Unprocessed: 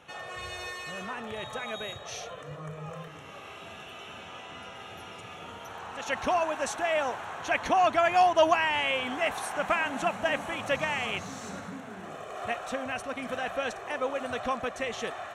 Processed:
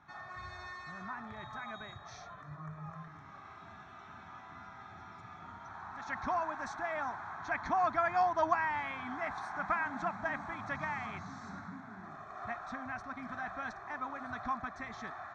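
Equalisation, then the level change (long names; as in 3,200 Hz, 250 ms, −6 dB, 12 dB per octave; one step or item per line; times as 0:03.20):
low-pass filter 4,700 Hz 24 dB per octave
phaser with its sweep stopped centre 1,200 Hz, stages 4
−3.0 dB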